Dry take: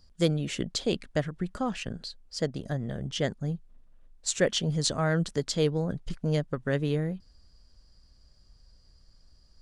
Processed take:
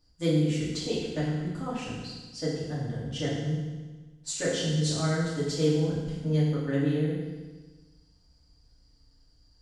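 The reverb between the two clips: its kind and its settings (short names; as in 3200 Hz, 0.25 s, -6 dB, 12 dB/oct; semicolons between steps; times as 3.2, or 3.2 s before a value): FDN reverb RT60 1.3 s, low-frequency decay 1.2×, high-frequency decay 1×, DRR -9 dB; gain -11.5 dB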